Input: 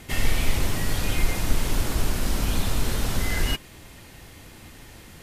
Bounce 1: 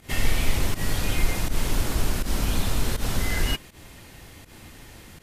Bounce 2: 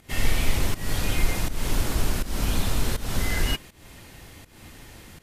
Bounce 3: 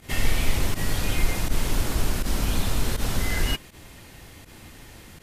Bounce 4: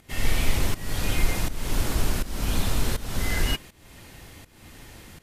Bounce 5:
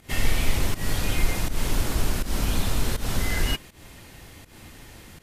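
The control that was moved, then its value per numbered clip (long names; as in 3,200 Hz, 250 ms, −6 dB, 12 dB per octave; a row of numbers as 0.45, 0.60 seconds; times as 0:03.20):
fake sidechain pumping, release: 113, 273, 73, 435, 175 milliseconds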